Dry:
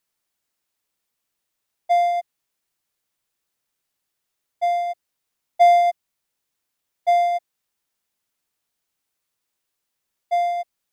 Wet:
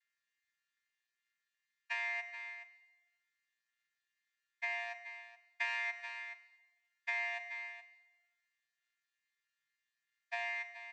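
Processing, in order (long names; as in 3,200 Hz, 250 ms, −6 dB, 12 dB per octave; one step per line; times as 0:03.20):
channel vocoder with a chord as carrier bare fifth, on A#3
four-pole ladder high-pass 1,700 Hz, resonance 70%
single-tap delay 425 ms −15 dB
four-comb reverb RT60 1.2 s, combs from 31 ms, DRR 11 dB
downward compressor 3 to 1, threshold −43 dBFS, peak gain reduction 8 dB
level +7 dB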